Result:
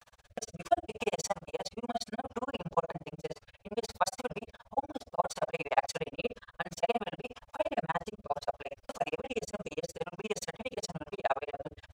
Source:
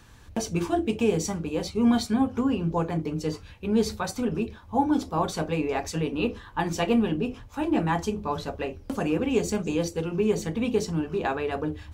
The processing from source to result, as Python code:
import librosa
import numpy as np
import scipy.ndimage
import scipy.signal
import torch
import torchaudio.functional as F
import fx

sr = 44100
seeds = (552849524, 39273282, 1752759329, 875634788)

y = fx.low_shelf_res(x, sr, hz=460.0, db=-11.0, q=3.0)
y = fx.rotary_switch(y, sr, hz=0.65, then_hz=6.0, switch_at_s=10.38)
y = fx.granulator(y, sr, seeds[0], grain_ms=43.0, per_s=17.0, spray_ms=19.0, spread_st=0)
y = y * 10.0 ** (3.0 / 20.0)